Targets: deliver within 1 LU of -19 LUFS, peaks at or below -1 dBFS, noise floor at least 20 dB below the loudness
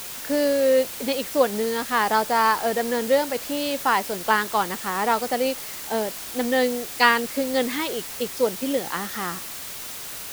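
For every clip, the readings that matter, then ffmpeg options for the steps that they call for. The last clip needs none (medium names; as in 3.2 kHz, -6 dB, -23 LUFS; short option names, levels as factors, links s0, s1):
noise floor -35 dBFS; noise floor target -44 dBFS; loudness -23.5 LUFS; peak level -3.0 dBFS; loudness target -19.0 LUFS
-> -af "afftdn=nr=9:nf=-35"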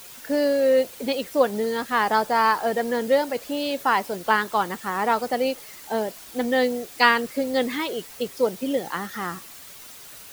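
noise floor -43 dBFS; noise floor target -44 dBFS
-> -af "afftdn=nr=6:nf=-43"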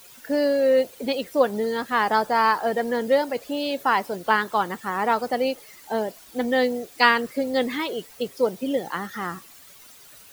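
noise floor -48 dBFS; loudness -23.5 LUFS; peak level -3.0 dBFS; loudness target -19.0 LUFS
-> -af "volume=1.68,alimiter=limit=0.891:level=0:latency=1"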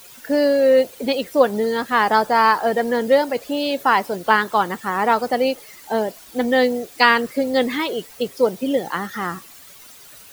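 loudness -19.5 LUFS; peak level -1.0 dBFS; noise floor -44 dBFS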